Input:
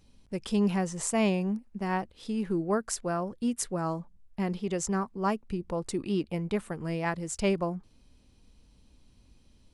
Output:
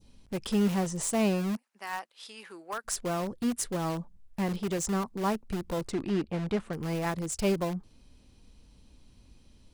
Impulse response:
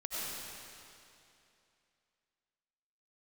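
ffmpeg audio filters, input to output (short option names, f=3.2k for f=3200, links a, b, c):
-filter_complex "[0:a]asplit=3[a][b][c];[a]afade=t=out:st=1.55:d=0.02[d];[b]highpass=1.1k,afade=t=in:st=1.55:d=0.02,afade=t=out:st=2.84:d=0.02[e];[c]afade=t=in:st=2.84:d=0.02[f];[d][e][f]amix=inputs=3:normalize=0,adynamicequalizer=threshold=0.00447:dfrequency=2000:dqfactor=0.75:tfrequency=2000:tqfactor=0.75:attack=5:release=100:ratio=0.375:range=3.5:mode=cutabove:tftype=bell,asplit=2[g][h];[h]aeval=exprs='(mod(29.9*val(0)+1,2)-1)/29.9':c=same,volume=-8.5dB[i];[g][i]amix=inputs=2:normalize=0,asettb=1/sr,asplit=3[j][k][l];[j]atrim=end=5.884[m];[k]atrim=start=5.88:end=6.73,asetpts=PTS-STARTPTS,afade=t=in:d=0.004:c=qsin,afade=t=out:st=0.846:d=0.004:c=qsin,adynamicsmooth=sensitivity=4:basefreq=4.6k[n];[l]atrim=start=6.726[o];[m][n]acrossfade=d=0.004:c1=hsin:c2=qsin[p];[p][o]acrossfade=d=0.004:c1=qsin:c2=hsin"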